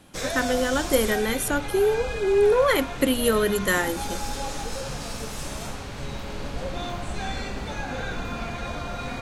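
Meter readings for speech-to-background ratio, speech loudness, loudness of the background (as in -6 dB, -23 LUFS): 9.5 dB, -23.0 LUFS, -32.5 LUFS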